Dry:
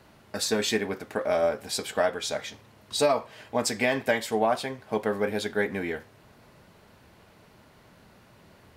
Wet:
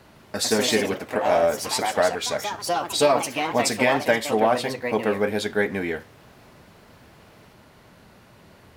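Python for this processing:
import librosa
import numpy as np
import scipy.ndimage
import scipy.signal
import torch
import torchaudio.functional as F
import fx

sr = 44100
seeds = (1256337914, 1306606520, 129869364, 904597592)

y = fx.echo_pitch(x, sr, ms=157, semitones=3, count=3, db_per_echo=-6.0)
y = F.gain(torch.from_numpy(y), 4.0).numpy()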